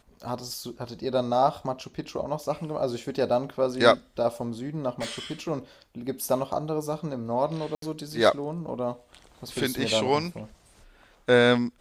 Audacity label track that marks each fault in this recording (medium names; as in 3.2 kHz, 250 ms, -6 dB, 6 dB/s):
5.000000	5.500000	clipped -26.5 dBFS
7.750000	7.820000	dropout 73 ms